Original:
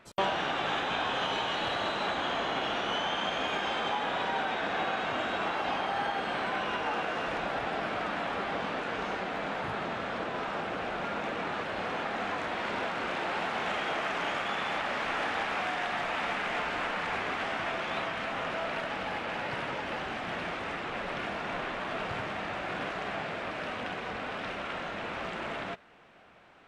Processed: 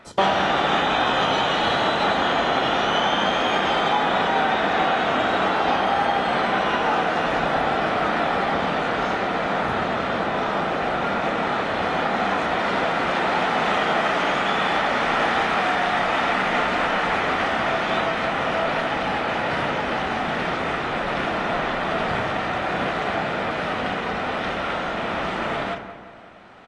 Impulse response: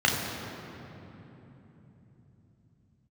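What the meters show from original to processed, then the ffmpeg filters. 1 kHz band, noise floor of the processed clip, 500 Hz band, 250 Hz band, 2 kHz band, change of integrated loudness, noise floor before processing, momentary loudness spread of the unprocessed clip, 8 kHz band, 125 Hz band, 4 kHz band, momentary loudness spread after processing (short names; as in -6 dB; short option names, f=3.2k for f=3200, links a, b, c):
+11.5 dB, -27 dBFS, +11.5 dB, +12.0 dB, +9.5 dB, +10.5 dB, -38 dBFS, 5 LU, +9.0 dB, +12.0 dB, +9.0 dB, 5 LU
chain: -filter_complex "[0:a]asplit=2[a][b];[b]adelay=179,lowpass=f=2.1k:p=1,volume=-10.5dB,asplit=2[c][d];[d]adelay=179,lowpass=f=2.1k:p=1,volume=0.54,asplit=2[e][f];[f]adelay=179,lowpass=f=2.1k:p=1,volume=0.54,asplit=2[g][h];[h]adelay=179,lowpass=f=2.1k:p=1,volume=0.54,asplit=2[i][j];[j]adelay=179,lowpass=f=2.1k:p=1,volume=0.54,asplit=2[k][l];[l]adelay=179,lowpass=f=2.1k:p=1,volume=0.54[m];[a][c][e][g][i][k][m]amix=inputs=7:normalize=0,asplit=2[n][o];[1:a]atrim=start_sample=2205,atrim=end_sample=4410[p];[o][p]afir=irnorm=-1:irlink=0,volume=-21dB[q];[n][q]amix=inputs=2:normalize=0,volume=8.5dB" -ar 24000 -c:a aac -b:a 32k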